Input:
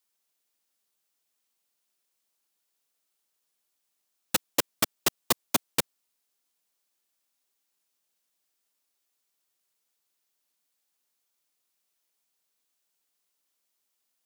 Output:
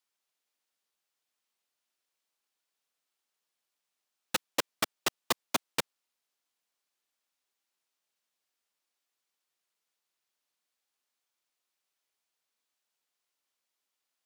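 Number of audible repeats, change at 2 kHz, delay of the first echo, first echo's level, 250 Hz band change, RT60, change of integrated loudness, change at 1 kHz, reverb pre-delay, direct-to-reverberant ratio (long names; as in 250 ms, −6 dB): no echo audible, −1.5 dB, no echo audible, no echo audible, −6.0 dB, no reverb audible, −5.0 dB, −1.5 dB, no reverb audible, no reverb audible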